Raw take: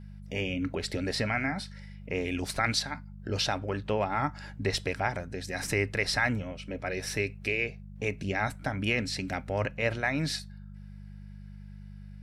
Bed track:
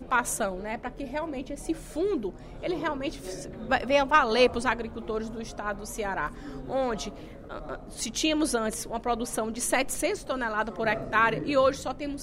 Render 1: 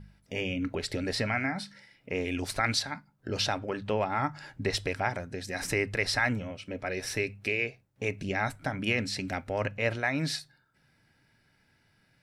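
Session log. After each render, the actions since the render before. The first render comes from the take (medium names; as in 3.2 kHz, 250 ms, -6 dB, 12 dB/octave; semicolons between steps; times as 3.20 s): de-hum 50 Hz, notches 4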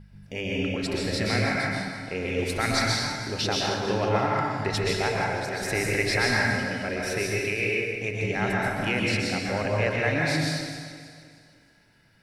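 backward echo that repeats 156 ms, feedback 62%, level -11 dB; plate-style reverb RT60 1.4 s, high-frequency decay 0.75×, pre-delay 110 ms, DRR -3 dB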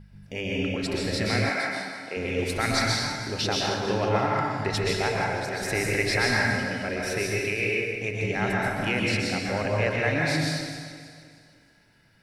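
1.49–2.17 s: high-pass 310 Hz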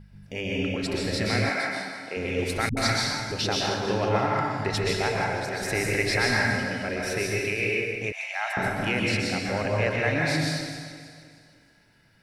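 2.69–3.32 s: phase dispersion highs, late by 79 ms, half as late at 320 Hz; 8.12–8.57 s: steep high-pass 640 Hz 72 dB/octave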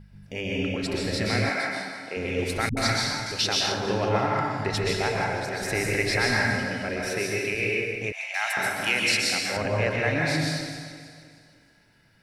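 3.26–3.72 s: tilt shelf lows -5 dB, about 1.2 kHz; 7.09–7.55 s: high-pass 120 Hz; 8.34–9.57 s: tilt EQ +3.5 dB/octave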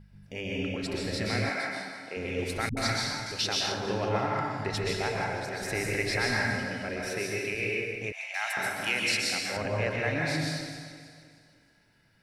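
trim -4.5 dB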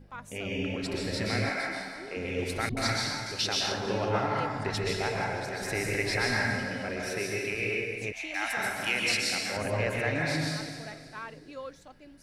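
add bed track -18.5 dB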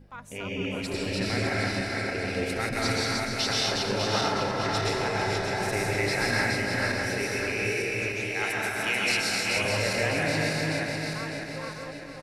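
backward echo that repeats 301 ms, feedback 66%, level -2.5 dB; delay 448 ms -10.5 dB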